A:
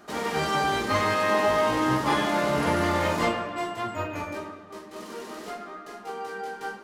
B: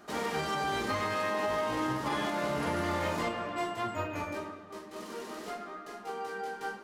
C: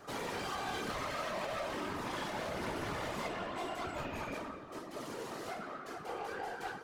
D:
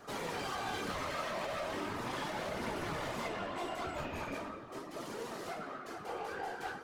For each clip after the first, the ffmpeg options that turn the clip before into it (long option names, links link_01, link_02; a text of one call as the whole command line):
ffmpeg -i in.wav -af "alimiter=limit=-19.5dB:level=0:latency=1:release=205,volume=-3dB" out.wav
ffmpeg -i in.wav -af "asoftclip=type=tanh:threshold=-37dB,afftfilt=real='hypot(re,im)*cos(2*PI*random(0))':imag='hypot(re,im)*sin(2*PI*random(1))':win_size=512:overlap=0.75,volume=6.5dB" out.wav
ffmpeg -i in.wav -af "flanger=delay=4:depth=9.8:regen=69:speed=0.38:shape=triangular,volume=4.5dB" out.wav